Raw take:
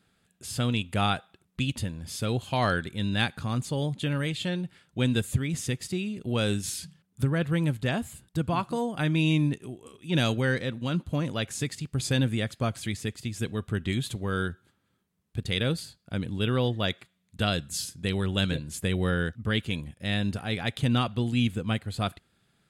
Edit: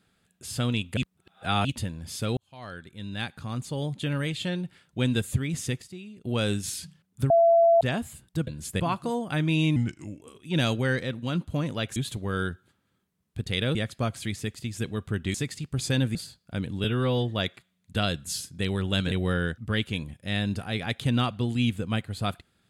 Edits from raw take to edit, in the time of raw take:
0.97–1.65 s: reverse
2.37–4.16 s: fade in
5.82–6.25 s: gain -11 dB
7.30–7.81 s: bleep 673 Hz -15 dBFS
9.43–9.80 s: speed 82%
11.55–12.36 s: swap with 13.95–15.74 s
16.43–16.72 s: stretch 1.5×
18.56–18.89 s: move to 8.47 s

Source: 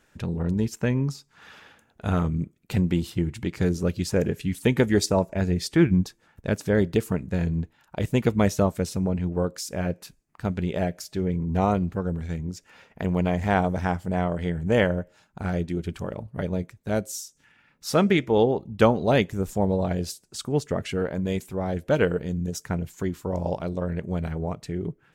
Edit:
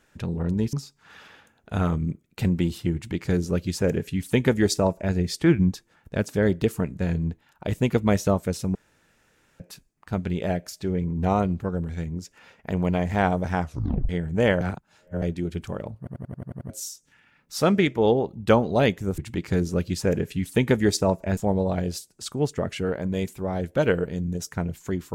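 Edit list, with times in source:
0.73–1.05 s: delete
3.27–5.46 s: copy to 19.50 s
9.07–9.92 s: room tone
13.94 s: tape stop 0.47 s
14.93–15.54 s: reverse
16.30 s: stutter in place 0.09 s, 8 plays

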